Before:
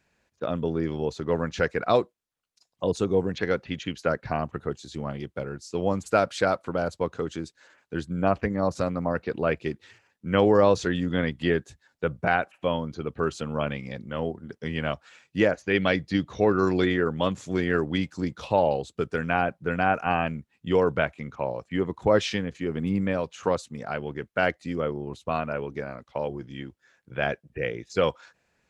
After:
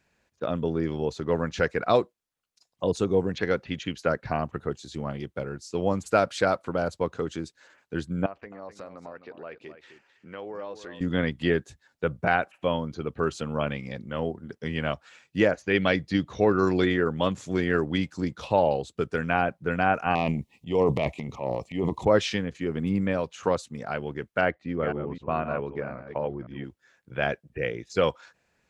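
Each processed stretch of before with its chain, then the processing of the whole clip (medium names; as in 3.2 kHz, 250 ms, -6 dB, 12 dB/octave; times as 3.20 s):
8.26–11.01 s: tone controls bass -13 dB, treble -6 dB + compression 2:1, threshold -48 dBFS + delay 260 ms -11 dB
20.15–22.05 s: transient shaper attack -6 dB, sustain +10 dB + Butterworth band-stop 1.5 kHz, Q 1.5
24.41–26.64 s: chunks repeated in reverse 257 ms, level -9 dB + low-pass 2.3 kHz
whole clip: none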